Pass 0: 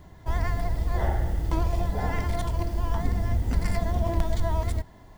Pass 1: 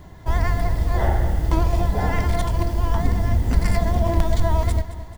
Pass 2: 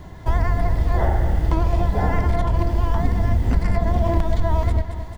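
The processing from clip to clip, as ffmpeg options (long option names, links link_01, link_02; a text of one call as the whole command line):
ffmpeg -i in.wav -af "aecho=1:1:219|438|657|876:0.188|0.0904|0.0434|0.0208,volume=6dB" out.wav
ffmpeg -i in.wav -filter_complex "[0:a]highshelf=frequency=7600:gain=-5.5,acrossover=split=1800|4200[link_01][link_02][link_03];[link_01]acompressor=threshold=-18dB:ratio=4[link_04];[link_02]acompressor=threshold=-49dB:ratio=4[link_05];[link_03]acompressor=threshold=-57dB:ratio=4[link_06];[link_04][link_05][link_06]amix=inputs=3:normalize=0,volume=4dB" out.wav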